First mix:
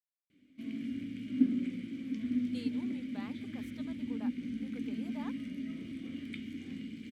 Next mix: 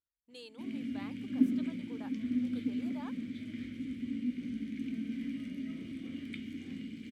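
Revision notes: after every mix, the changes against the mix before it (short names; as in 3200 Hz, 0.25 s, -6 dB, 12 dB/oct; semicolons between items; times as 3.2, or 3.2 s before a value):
speech: entry -2.20 s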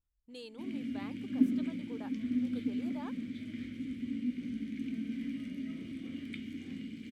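speech: remove HPF 530 Hz 6 dB/oct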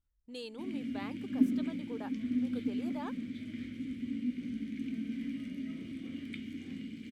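speech +4.0 dB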